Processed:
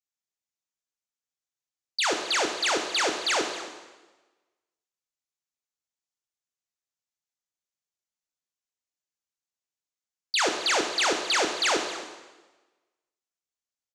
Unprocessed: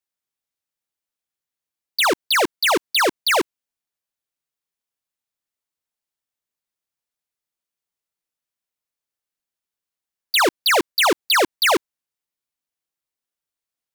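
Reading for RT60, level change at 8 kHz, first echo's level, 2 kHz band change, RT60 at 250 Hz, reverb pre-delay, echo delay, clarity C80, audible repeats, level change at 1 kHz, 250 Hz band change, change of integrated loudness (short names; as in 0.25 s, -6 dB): 1.2 s, -3.0 dB, -17.0 dB, -7.0 dB, 1.2 s, 7 ms, 0.268 s, 7.5 dB, 1, -8.0 dB, -8.0 dB, -7.0 dB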